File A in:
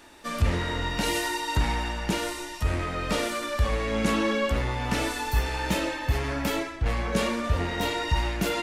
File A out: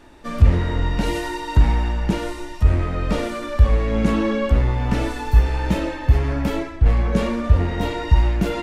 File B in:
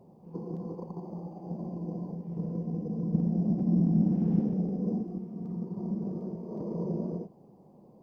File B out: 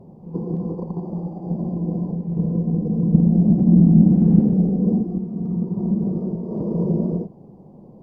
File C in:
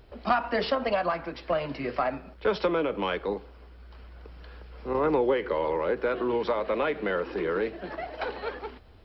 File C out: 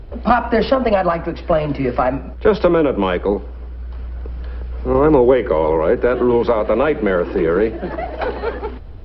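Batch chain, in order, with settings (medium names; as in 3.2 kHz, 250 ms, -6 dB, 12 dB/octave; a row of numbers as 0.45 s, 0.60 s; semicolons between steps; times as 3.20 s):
tilt EQ -2.5 dB/octave; peak normalisation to -1.5 dBFS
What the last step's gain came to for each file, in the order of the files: +1.5 dB, +6.5 dB, +9.5 dB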